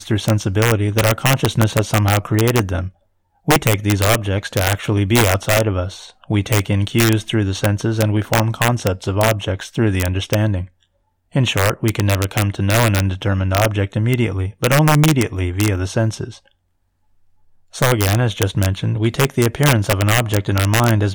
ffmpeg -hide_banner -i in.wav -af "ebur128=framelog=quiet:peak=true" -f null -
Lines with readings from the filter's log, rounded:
Integrated loudness:
  I:         -17.3 LUFS
  Threshold: -27.7 LUFS
Loudness range:
  LRA:         3.0 LU
  Threshold: -38.0 LUFS
  LRA low:   -19.6 LUFS
  LRA high:  -16.6 LUFS
True peak:
  Peak:       -0.5 dBFS